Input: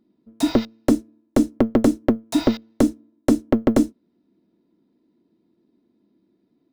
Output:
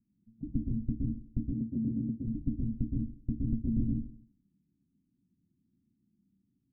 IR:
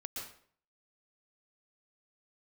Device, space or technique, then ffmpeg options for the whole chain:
club heard from the street: -filter_complex "[0:a]alimiter=limit=-10dB:level=0:latency=1,lowpass=frequency=160:width=0.5412,lowpass=frequency=160:width=1.3066[link_01];[1:a]atrim=start_sample=2205[link_02];[link_01][link_02]afir=irnorm=-1:irlink=0,asplit=3[link_03][link_04][link_05];[link_03]afade=type=out:start_time=1.51:duration=0.02[link_06];[link_04]highpass=130,afade=type=in:start_time=1.51:duration=0.02,afade=type=out:start_time=2.26:duration=0.02[link_07];[link_05]afade=type=in:start_time=2.26:duration=0.02[link_08];[link_06][link_07][link_08]amix=inputs=3:normalize=0,volume=4.5dB"

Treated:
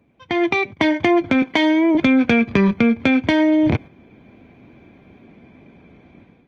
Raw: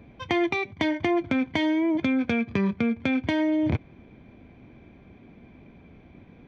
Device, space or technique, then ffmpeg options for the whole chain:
video call: -filter_complex "[0:a]asettb=1/sr,asplit=3[link_01][link_02][link_03];[link_01]atrim=end=1.424[link_04];[link_02]atrim=start=1.42:end=1.95,asetpts=PTS-STARTPTS,afade=type=in:duration=0.004:curve=qsin,afade=type=out:start_time=0.526:duration=0.004:curve=qsin,highpass=260[link_05];[link_03]atrim=start=1.946[link_06];[link_04][link_05]acrossfade=duration=0.004:curve1=hsin:curve2=qsin[link_07];[link_07][link_06]acrossfade=duration=0.004:curve1=qsin:curve2=hsin,highpass=frequency=130:poles=1,dynaudnorm=framelen=270:gausssize=3:maxgain=13dB,agate=range=-8dB:threshold=-30dB:ratio=16:detection=peak" -ar 48000 -c:a libopus -b:a 24k

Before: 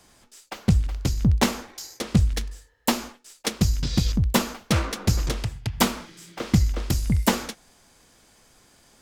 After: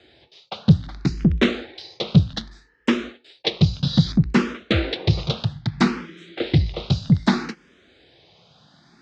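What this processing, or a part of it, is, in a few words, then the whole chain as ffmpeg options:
barber-pole phaser into a guitar amplifier: -filter_complex "[0:a]asplit=2[link_01][link_02];[link_02]afreqshift=0.63[link_03];[link_01][link_03]amix=inputs=2:normalize=1,asoftclip=type=tanh:threshold=-14.5dB,highpass=84,equalizer=frequency=160:width_type=q:width=4:gain=8,equalizer=frequency=360:width_type=q:width=4:gain=5,equalizer=frequency=990:width_type=q:width=4:gain=-5,equalizer=frequency=3800:width_type=q:width=4:gain=7,lowpass=frequency=4300:width=0.5412,lowpass=frequency=4300:width=1.3066,volume=6.5dB"

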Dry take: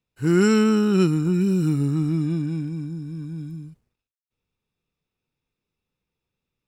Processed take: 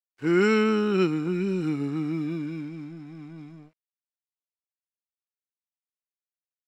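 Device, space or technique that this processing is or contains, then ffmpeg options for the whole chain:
pocket radio on a weak battery: -af "highpass=280,lowpass=4000,aeval=exprs='sgn(val(0))*max(abs(val(0))-0.00251,0)':channel_layout=same,equalizer=frequency=2200:width_type=o:width=0.23:gain=7"

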